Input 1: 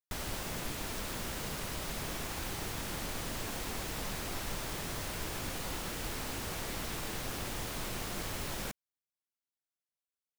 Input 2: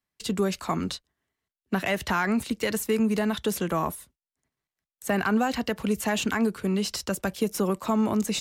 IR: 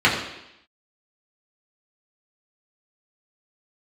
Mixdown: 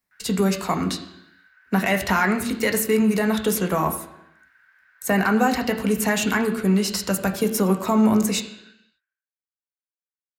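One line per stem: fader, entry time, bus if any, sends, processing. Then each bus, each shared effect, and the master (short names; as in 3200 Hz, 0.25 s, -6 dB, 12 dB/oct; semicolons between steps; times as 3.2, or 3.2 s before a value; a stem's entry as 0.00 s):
-16.0 dB, 0.00 s, send -18 dB, ladder band-pass 1600 Hz, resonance 90%
+2.5 dB, 0.00 s, send -23.5 dB, high shelf 7900 Hz +9 dB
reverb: on, RT60 0.85 s, pre-delay 3 ms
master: dry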